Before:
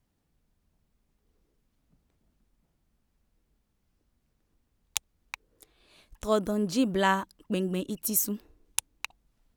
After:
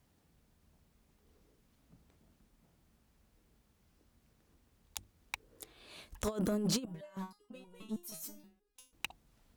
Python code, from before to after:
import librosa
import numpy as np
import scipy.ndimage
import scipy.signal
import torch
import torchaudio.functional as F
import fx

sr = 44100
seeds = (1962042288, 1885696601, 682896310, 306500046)

y = scipy.signal.sosfilt(scipy.signal.butter(2, 43.0, 'highpass', fs=sr, output='sos'), x)
y = fx.hum_notches(y, sr, base_hz=50, count=7)
y = fx.over_compress(y, sr, threshold_db=-31.0, ratio=-0.5)
y = 10.0 ** (-27.5 / 20.0) * np.tanh(y / 10.0 ** (-27.5 / 20.0))
y = fx.resonator_held(y, sr, hz=6.3, low_hz=160.0, high_hz=480.0, at=(6.85, 8.93))
y = y * 10.0 ** (2.0 / 20.0)